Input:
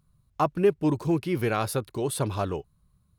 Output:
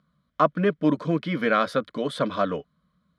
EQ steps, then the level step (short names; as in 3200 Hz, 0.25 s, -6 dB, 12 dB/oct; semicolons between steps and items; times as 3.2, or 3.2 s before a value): HPF 140 Hz 12 dB/oct; synth low-pass 3000 Hz, resonance Q 8.8; fixed phaser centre 560 Hz, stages 8; +7.0 dB